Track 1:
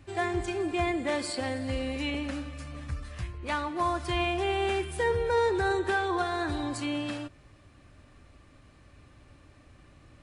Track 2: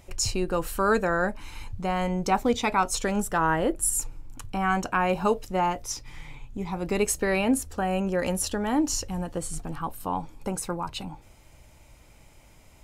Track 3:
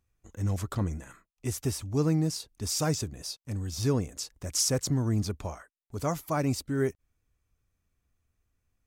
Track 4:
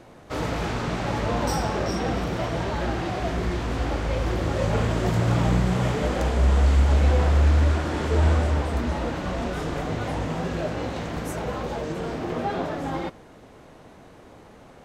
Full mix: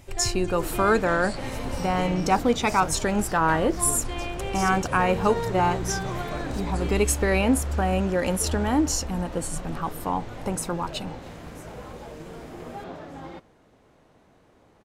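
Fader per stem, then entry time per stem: −5.5, +2.0, −10.0, −10.5 decibels; 0.00, 0.00, 0.00, 0.30 seconds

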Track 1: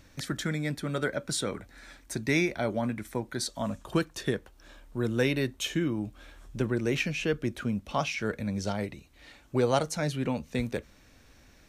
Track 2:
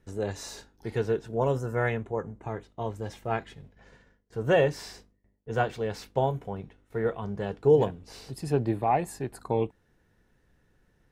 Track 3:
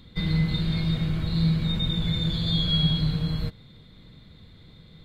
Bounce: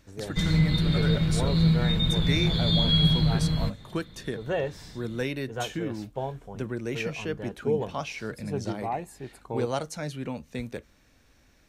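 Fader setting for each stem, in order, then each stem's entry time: −4.0, −6.5, +1.5 decibels; 0.00, 0.00, 0.20 seconds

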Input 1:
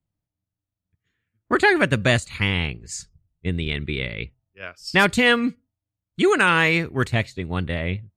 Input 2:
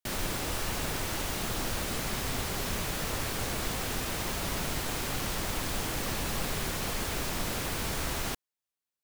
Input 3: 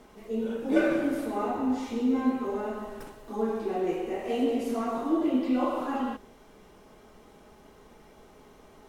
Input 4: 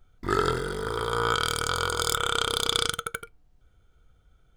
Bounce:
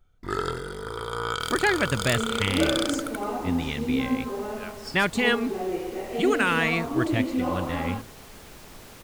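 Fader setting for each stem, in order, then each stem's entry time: −6.0, −13.5, −0.5, −4.0 decibels; 0.00, 1.35, 1.85, 0.00 seconds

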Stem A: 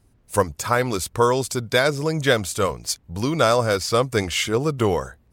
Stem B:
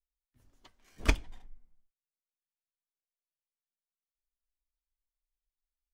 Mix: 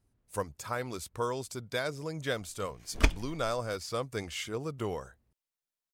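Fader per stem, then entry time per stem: −14.5, +2.0 decibels; 0.00, 1.95 seconds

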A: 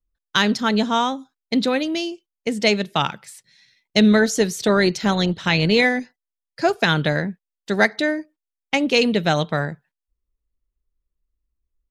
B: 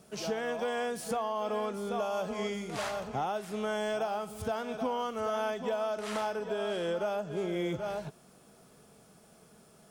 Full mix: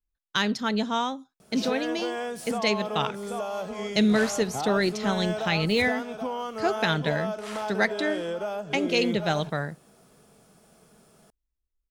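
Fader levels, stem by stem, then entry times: −7.0, +1.0 decibels; 0.00, 1.40 seconds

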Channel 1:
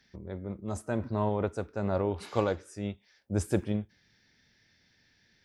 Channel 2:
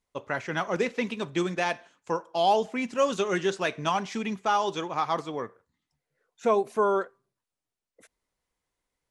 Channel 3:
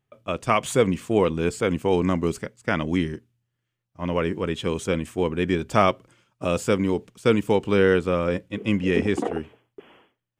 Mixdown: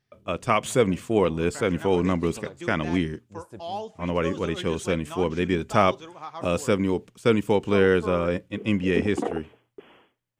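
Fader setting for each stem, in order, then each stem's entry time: −15.5, −10.5, −1.0 decibels; 0.00, 1.25, 0.00 seconds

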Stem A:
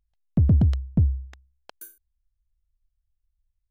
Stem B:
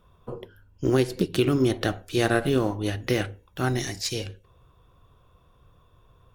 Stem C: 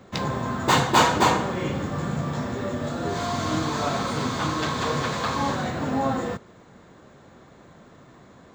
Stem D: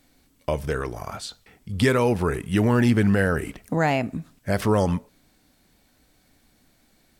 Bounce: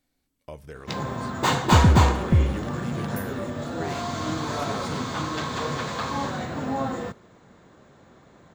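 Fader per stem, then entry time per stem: +1.5, −18.0, −3.0, −15.0 decibels; 1.35, 0.80, 0.75, 0.00 seconds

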